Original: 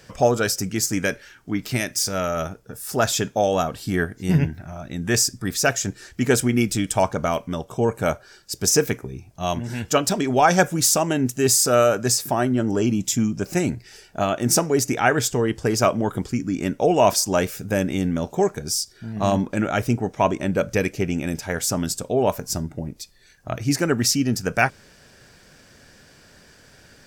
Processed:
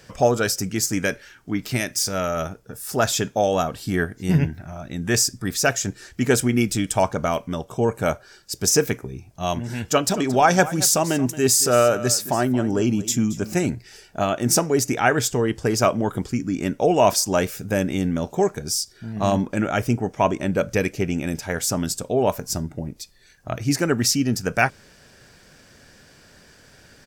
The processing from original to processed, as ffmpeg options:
ffmpeg -i in.wav -filter_complex "[0:a]asplit=3[link_01][link_02][link_03];[link_01]afade=type=out:start_time=10.07:duration=0.02[link_04];[link_02]aecho=1:1:225:0.158,afade=type=in:start_time=10.07:duration=0.02,afade=type=out:start_time=13.68:duration=0.02[link_05];[link_03]afade=type=in:start_time=13.68:duration=0.02[link_06];[link_04][link_05][link_06]amix=inputs=3:normalize=0,asettb=1/sr,asplit=3[link_07][link_08][link_09];[link_07]atrim=end=19.464[link_10];[link_08]atrim=start=19.46:end=20.36,asetpts=PTS-STARTPTS,afade=type=in:duration=0.004:curve=qsin,afade=type=out:start_time=0.896:duration=0.004:curve=qsin,bandreject=frequency=3900:width=11[link_11];[link_09]atrim=start=20.356[link_12];[link_10][link_11]acrossfade=duration=0.004:curve1=hsin:curve2=qsin[link_13];[link_13][link_12]acrossfade=duration=0.004:curve1=qsin:curve2=hsin" out.wav

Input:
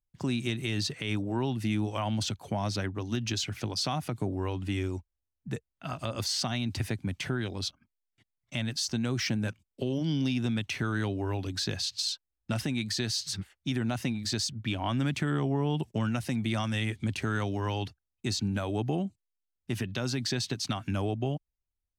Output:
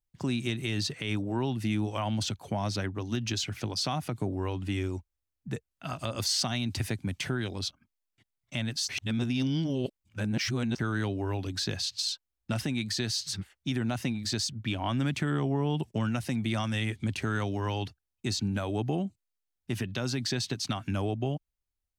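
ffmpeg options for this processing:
ffmpeg -i in.wav -filter_complex "[0:a]asettb=1/sr,asplit=3[link_01][link_02][link_03];[link_01]atrim=end=5.714[link_04];[link_02]atrim=start=5.71:end=7.59,asetpts=PTS-STARTPTS,afade=type=in:duration=0.004:curve=qsin,afade=type=out:start_time=1.876:duration=0.004:curve=qsin,equalizer=frequency=11000:width=0.31:gain=4[link_05];[link_03]atrim=start=7.586[link_06];[link_04][link_05]acrossfade=duration=0.004:curve1=hsin:curve2=qsin[link_07];[link_07][link_06]acrossfade=duration=0.004:curve1=qsin:curve2=hsin,asplit=3[link_08][link_09][link_10];[link_08]atrim=end=8.892[link_11];[link_09]atrim=start=8.888:end=10.792,asetpts=PTS-STARTPTS,areverse[link_12];[link_10]atrim=start=10.788[link_13];[link_11][link_12]acrossfade=duration=0.004:curve1=hsin:curve2=hsin[link_14];[link_14][link_13]acrossfade=duration=0.004:curve1=hsin:curve2=hsin" out.wav

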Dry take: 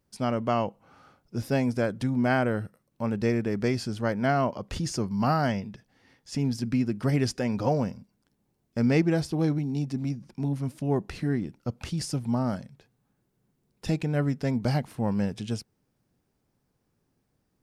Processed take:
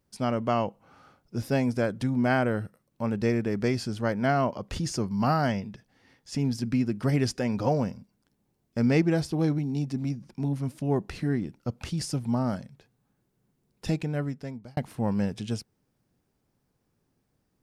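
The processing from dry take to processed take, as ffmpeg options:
ffmpeg -i in.wav -filter_complex "[0:a]asplit=2[link_01][link_02];[link_01]atrim=end=14.77,asetpts=PTS-STARTPTS,afade=type=out:start_time=13.87:duration=0.9[link_03];[link_02]atrim=start=14.77,asetpts=PTS-STARTPTS,afade=type=in:duration=0.004:curve=hsin[link_04];[link_03][link_04]concat=n=2:v=0:a=1" out.wav

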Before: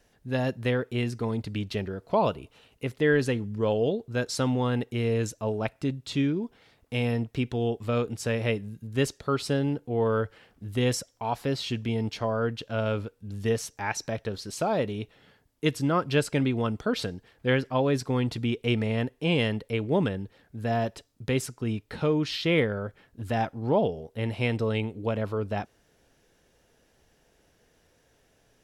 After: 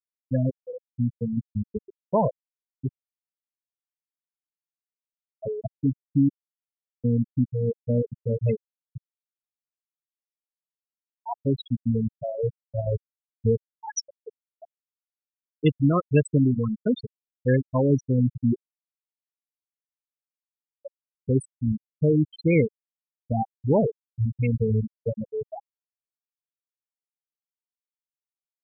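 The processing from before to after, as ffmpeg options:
ffmpeg -i in.wav -filter_complex "[0:a]asplit=3[link_01][link_02][link_03];[link_01]afade=type=out:start_time=0.53:duration=0.02[link_04];[link_02]highpass=frequency=680:poles=1,afade=type=in:start_time=0.53:duration=0.02,afade=type=out:start_time=0.98:duration=0.02[link_05];[link_03]afade=type=in:start_time=0.98:duration=0.02[link_06];[link_04][link_05][link_06]amix=inputs=3:normalize=0,asettb=1/sr,asplit=3[link_07][link_08][link_09];[link_07]atrim=end=8.974[link_10];[link_08]atrim=start=8.97:end=11.26,asetpts=PTS-STARTPTS,afade=type=in:duration=0.004:curve=qsin,afade=type=out:start_time=2.286:duration=0.004:curve=qsin,acompressor=threshold=-34dB:ratio=6:attack=3.2:release=140:knee=1:detection=peak[link_11];[link_09]atrim=start=11.256[link_12];[link_10][link_11]acrossfade=duration=0.004:curve1=hsin:curve2=qsin[link_13];[link_13][link_12]acrossfade=duration=0.004:curve1=qsin:curve2=hsin,asplit=8[link_14][link_15][link_16][link_17][link_18][link_19][link_20][link_21];[link_14]atrim=end=2.89,asetpts=PTS-STARTPTS,afade=type=out:start_time=2.886:duration=0.004:curve=hsin[link_22];[link_15]atrim=start=2.89:end=5.32,asetpts=PTS-STARTPTS,volume=0[link_23];[link_16]atrim=start=5.32:end=6.29,asetpts=PTS-STARTPTS,afade=type=in:duration=0.004:curve=hsin,afade=type=out:start_time=0.966:duration=0.004:curve=hsin[link_24];[link_17]atrim=start=6.29:end=7.04,asetpts=PTS-STARTPTS,volume=0[link_25];[link_18]atrim=start=7.04:end=15.01,asetpts=PTS-STARTPTS,afade=type=in:duration=0.004:curve=hsin,afade=type=out:start_time=6.91:duration=1.06:silence=0.0668344[link_26];[link_19]atrim=start=15.01:end=18.61,asetpts=PTS-STARTPTS,afade=type=in:duration=0.004:curve=hsin:silence=0.0668344,afade=type=out:start_time=3.596:duration=0.004:curve=hsin[link_27];[link_20]atrim=start=18.61:end=20.85,asetpts=PTS-STARTPTS,volume=0[link_28];[link_21]atrim=start=20.85,asetpts=PTS-STARTPTS,afade=type=in:duration=0.004:curve=hsin[link_29];[link_22][link_23][link_24][link_25][link_26][link_27][link_28][link_29]concat=n=8:v=0:a=1,aemphasis=mode=production:type=75fm,afftfilt=real='re*gte(hypot(re,im),0.251)':imag='im*gte(hypot(re,im),0.251)':win_size=1024:overlap=0.75,lowshelf=frequency=370:gain=10.5" out.wav

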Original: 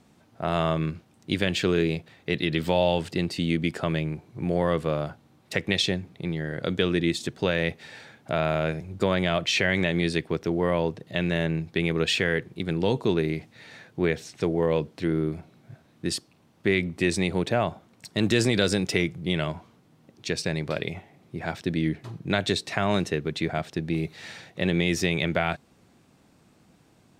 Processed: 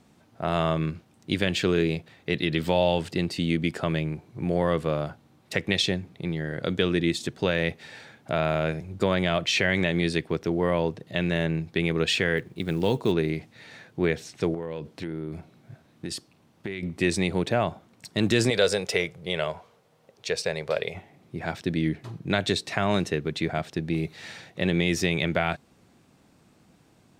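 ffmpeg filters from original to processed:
ffmpeg -i in.wav -filter_complex "[0:a]asettb=1/sr,asplit=3[link_01][link_02][link_03];[link_01]atrim=end=12.374[link_04];[link_02]atrim=start=12.37:end=13.12,asetpts=PTS-STARTPTS,afade=type=in:duration=0.004:curve=qsin,afade=type=out:start_time=0.746:duration=0.004:curve=qsin,acrusher=bits=8:mode=log:mix=0:aa=0.000001[link_05];[link_03]atrim=start=13.116[link_06];[link_04][link_05]acrossfade=duration=0.004:curve1=hsin:curve2=qsin[link_07];[link_07][link_06]acrossfade=duration=0.004:curve1=qsin:curve2=hsin,asettb=1/sr,asplit=3[link_08][link_09][link_10];[link_08]atrim=end=14.544[link_11];[link_09]atrim=start=14.54:end=16.83,asetpts=PTS-STARTPTS,afade=type=in:duration=0.004:curve=qsin,afade=type=out:start_time=2.286:duration=0.004:curve=qsin,acompressor=threshold=-28dB:ratio=10:attack=3.2:release=140:knee=1:detection=peak[link_12];[link_10]atrim=start=16.826[link_13];[link_11][link_12]acrossfade=duration=0.004:curve1=hsin:curve2=qsin[link_14];[link_14][link_13]acrossfade=duration=0.004:curve1=qsin:curve2=hsin,asettb=1/sr,asplit=3[link_15][link_16][link_17];[link_15]atrim=end=18.504[link_18];[link_16]atrim=start=18.5:end=20.95,asetpts=PTS-STARTPTS,afade=type=in:duration=0.004:curve=qsin,afade=type=out:start_time=2.446:duration=0.004:curve=qsin,lowshelf=frequency=380:width_type=q:width=3:gain=-7[link_19];[link_17]atrim=start=20.946[link_20];[link_18][link_19]acrossfade=duration=0.004:curve1=hsin:curve2=qsin[link_21];[link_21][link_20]acrossfade=duration=0.004:curve1=qsin:curve2=hsin" out.wav

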